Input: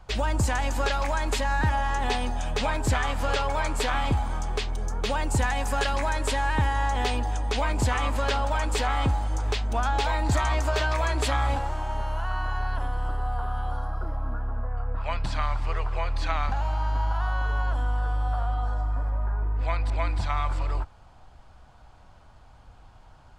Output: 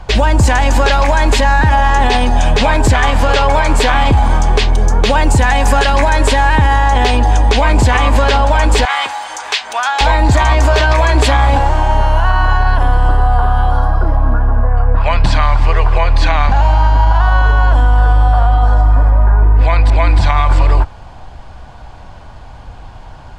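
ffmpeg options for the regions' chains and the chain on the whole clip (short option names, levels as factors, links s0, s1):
-filter_complex "[0:a]asettb=1/sr,asplit=3[s0][s1][s2];[s0]atrim=end=8.854[s3];[s1]atrim=start=8.85:end=10.01,asetpts=PTS-STARTPTS,afade=t=in:d=0.004:c=qsin,afade=t=out:st=1.156:d=0.004:c=qsin,highpass=1200,acompressor=mode=upward:threshold=0.0141:ratio=2.5:attack=3.2:release=140:knee=2.83:detection=peak[s4];[s2]atrim=start=10.006[s5];[s3][s4]acrossfade=d=0.004:c1=hsin:c2=qsin[s6];[s6][s5]acrossfade=d=0.004:c1=qsin:c2=hsin,highshelf=f=8500:g=-9.5,bandreject=f=1300:w=9.3,alimiter=level_in=9.44:limit=0.891:release=50:level=0:latency=1,volume=0.891"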